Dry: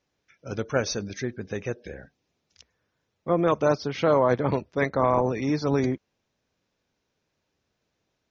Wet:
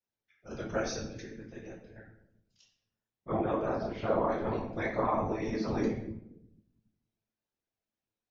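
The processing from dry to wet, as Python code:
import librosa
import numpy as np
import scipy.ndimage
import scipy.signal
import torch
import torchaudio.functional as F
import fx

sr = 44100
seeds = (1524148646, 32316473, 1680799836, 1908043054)

y = fx.lowpass(x, sr, hz=1900.0, slope=6, at=(3.44, 4.32))
y = fx.noise_reduce_blind(y, sr, reduce_db=10)
y = fx.level_steps(y, sr, step_db=18, at=(1.07, 1.96))
y = fx.room_shoebox(y, sr, seeds[0], volume_m3=180.0, walls='mixed', distance_m=1.2)
y = fx.whisperise(y, sr, seeds[1])
y = fx.comb_fb(y, sr, f0_hz=110.0, decay_s=0.2, harmonics='all', damping=0.0, mix_pct=70)
y = y * 10.0 ** (-6.0 / 20.0)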